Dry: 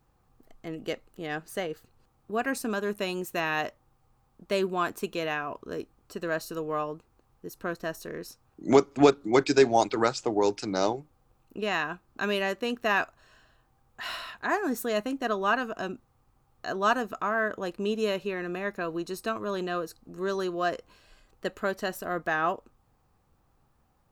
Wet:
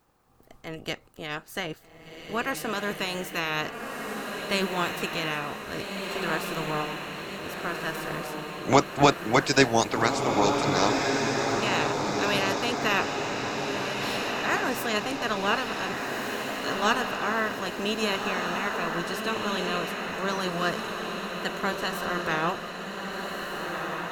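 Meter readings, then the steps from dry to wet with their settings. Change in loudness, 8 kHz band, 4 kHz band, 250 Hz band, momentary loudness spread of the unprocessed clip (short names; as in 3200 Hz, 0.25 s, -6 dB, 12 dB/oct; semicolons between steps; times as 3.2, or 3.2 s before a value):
+1.5 dB, +7.0 dB, +8.0 dB, +1.5 dB, 15 LU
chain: spectral limiter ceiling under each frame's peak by 15 dB; diffused feedback echo 1.595 s, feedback 60%, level -3.5 dB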